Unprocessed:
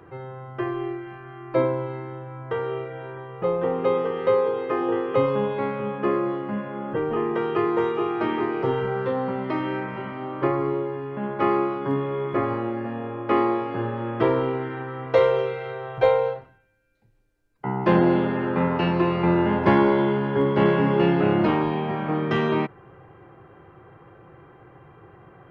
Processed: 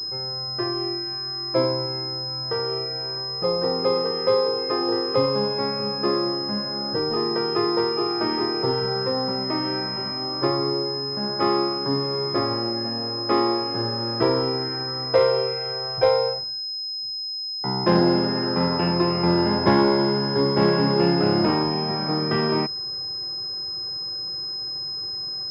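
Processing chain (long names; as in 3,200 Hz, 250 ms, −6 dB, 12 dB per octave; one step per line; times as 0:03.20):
switching amplifier with a slow clock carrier 5,100 Hz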